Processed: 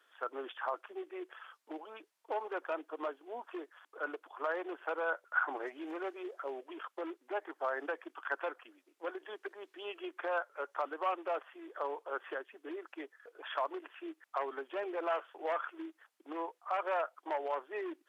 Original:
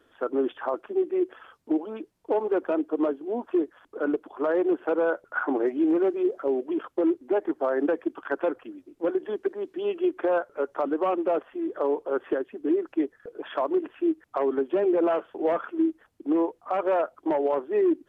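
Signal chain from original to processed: high-pass 1 kHz 12 dB/octave; trim -1.5 dB

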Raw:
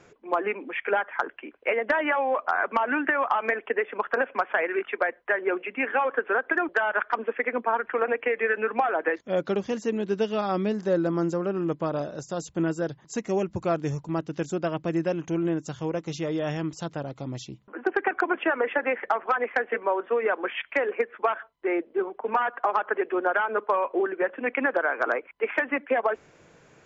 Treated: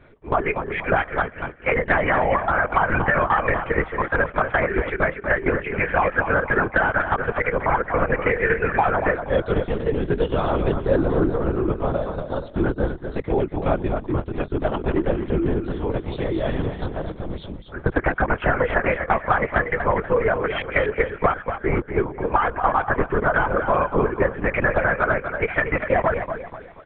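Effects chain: band-stop 2.7 kHz, Q 7.5; feedback delay 240 ms, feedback 37%, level -8 dB; LPC vocoder at 8 kHz whisper; trim +4.5 dB

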